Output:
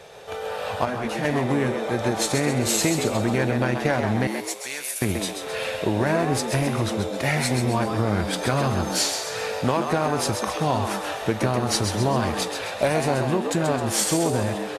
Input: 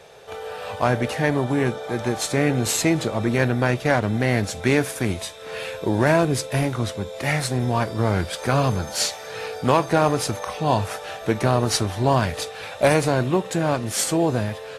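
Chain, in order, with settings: 4.27–5.02 differentiator; compressor 4:1, threshold -21 dBFS, peak gain reduction 8.5 dB; frequency-shifting echo 0.132 s, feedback 48%, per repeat +98 Hz, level -6.5 dB; 0.85–1.25 detuned doubles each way 14 cents; gain +2 dB

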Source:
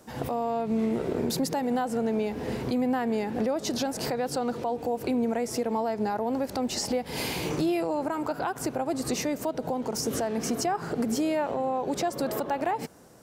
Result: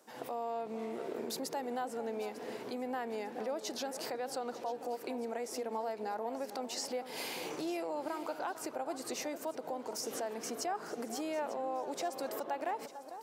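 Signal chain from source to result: HPF 370 Hz 12 dB/oct; echo with dull and thin repeats by turns 0.449 s, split 1400 Hz, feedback 57%, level -11 dB; gain -8 dB

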